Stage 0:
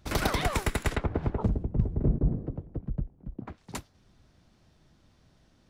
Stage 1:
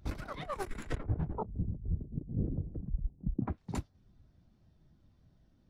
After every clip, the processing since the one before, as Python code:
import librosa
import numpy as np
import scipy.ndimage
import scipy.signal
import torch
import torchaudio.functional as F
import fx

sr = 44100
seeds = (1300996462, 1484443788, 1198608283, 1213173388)

y = fx.over_compress(x, sr, threshold_db=-37.0, ratio=-1.0)
y = fx.spectral_expand(y, sr, expansion=1.5)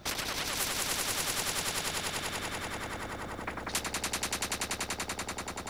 y = fx.echo_swell(x, sr, ms=96, loudest=5, wet_db=-5)
y = fx.spectral_comp(y, sr, ratio=10.0)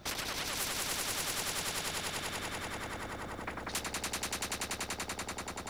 y = 10.0 ** (-24.0 / 20.0) * np.tanh(x / 10.0 ** (-24.0 / 20.0))
y = y * 10.0 ** (-2.0 / 20.0)